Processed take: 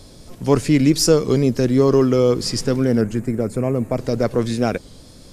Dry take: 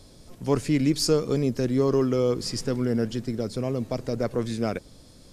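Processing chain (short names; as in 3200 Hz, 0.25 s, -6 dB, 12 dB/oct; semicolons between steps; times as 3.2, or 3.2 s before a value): 3.02–3.98 band shelf 4200 Hz -14 dB 1.2 oct; record warp 33 1/3 rpm, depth 100 cents; gain +7.5 dB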